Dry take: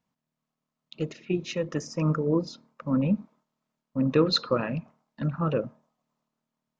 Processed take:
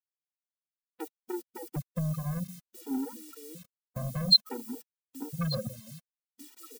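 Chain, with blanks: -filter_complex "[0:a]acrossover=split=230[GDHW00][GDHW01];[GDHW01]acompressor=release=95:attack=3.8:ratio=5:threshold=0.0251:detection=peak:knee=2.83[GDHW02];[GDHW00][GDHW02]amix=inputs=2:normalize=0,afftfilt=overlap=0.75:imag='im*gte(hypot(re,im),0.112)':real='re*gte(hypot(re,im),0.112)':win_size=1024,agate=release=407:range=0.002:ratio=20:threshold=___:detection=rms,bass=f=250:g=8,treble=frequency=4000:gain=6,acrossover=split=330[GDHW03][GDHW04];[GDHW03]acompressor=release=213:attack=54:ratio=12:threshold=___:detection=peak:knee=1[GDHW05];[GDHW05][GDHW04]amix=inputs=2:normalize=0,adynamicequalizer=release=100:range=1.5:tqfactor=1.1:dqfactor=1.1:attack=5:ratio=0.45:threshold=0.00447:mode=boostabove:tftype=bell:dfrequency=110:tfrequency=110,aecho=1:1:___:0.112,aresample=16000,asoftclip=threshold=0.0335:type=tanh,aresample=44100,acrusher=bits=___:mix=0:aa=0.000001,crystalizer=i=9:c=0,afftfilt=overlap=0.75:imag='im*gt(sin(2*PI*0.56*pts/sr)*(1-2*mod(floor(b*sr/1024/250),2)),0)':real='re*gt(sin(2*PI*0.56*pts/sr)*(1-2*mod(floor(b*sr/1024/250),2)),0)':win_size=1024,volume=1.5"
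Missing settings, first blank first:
0.00794, 0.0178, 1186, 10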